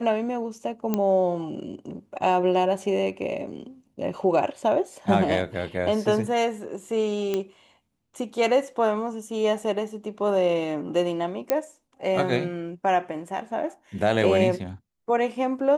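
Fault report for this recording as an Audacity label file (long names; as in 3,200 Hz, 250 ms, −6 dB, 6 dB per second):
0.940000	0.940000	click −11 dBFS
7.340000	7.340000	click −13 dBFS
11.500000	11.500000	click −8 dBFS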